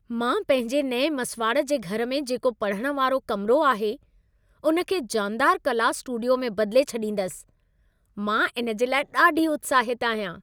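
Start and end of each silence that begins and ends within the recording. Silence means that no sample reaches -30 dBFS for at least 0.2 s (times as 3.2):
3.94–4.64
7.34–8.18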